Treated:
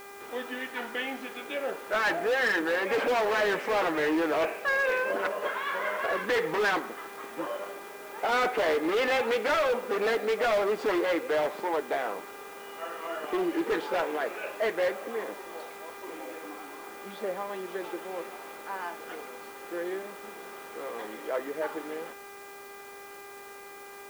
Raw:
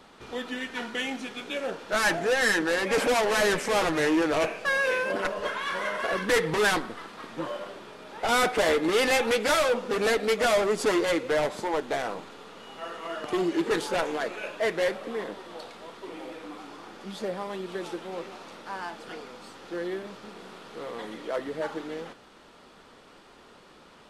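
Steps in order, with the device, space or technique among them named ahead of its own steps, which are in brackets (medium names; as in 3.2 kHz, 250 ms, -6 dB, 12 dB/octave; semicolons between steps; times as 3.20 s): aircraft radio (band-pass 310–2600 Hz; hard clipper -21.5 dBFS, distortion -15 dB; mains buzz 400 Hz, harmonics 6, -47 dBFS -3 dB/octave; white noise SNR 23 dB)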